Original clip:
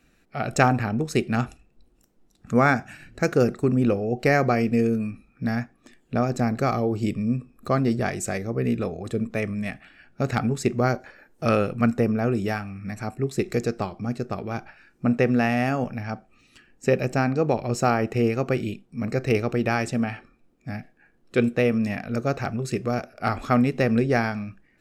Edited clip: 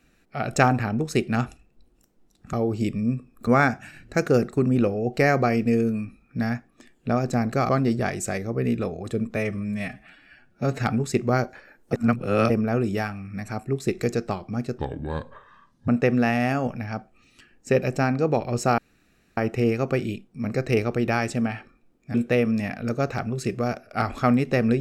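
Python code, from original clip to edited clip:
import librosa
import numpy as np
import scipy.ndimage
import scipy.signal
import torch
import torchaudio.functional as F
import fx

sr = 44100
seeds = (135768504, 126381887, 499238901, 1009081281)

y = fx.edit(x, sr, fx.move(start_s=6.75, length_s=0.94, to_s=2.53),
    fx.stretch_span(start_s=9.36, length_s=0.98, factor=1.5),
    fx.reverse_span(start_s=11.44, length_s=0.57),
    fx.speed_span(start_s=14.29, length_s=0.76, speed=0.69),
    fx.insert_room_tone(at_s=17.95, length_s=0.59),
    fx.cut(start_s=20.72, length_s=0.69), tone=tone)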